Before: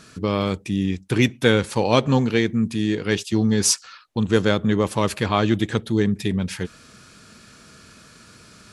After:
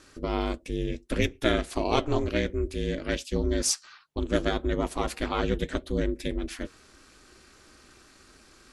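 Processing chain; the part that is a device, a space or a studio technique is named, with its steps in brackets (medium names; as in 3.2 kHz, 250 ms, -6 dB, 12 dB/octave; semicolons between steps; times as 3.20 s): alien voice (ring modulator 150 Hz; flange 1.7 Hz, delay 3.1 ms, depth 3 ms, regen -75%)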